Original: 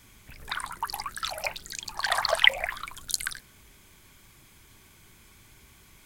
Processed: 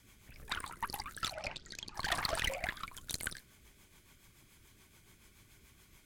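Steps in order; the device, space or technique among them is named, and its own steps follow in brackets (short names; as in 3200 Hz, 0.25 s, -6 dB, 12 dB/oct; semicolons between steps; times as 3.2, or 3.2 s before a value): 1.34–1.95 LPF 6000 Hz 24 dB/oct; overdriven rotary cabinet (tube stage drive 23 dB, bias 0.75; rotary speaker horn 7 Hz)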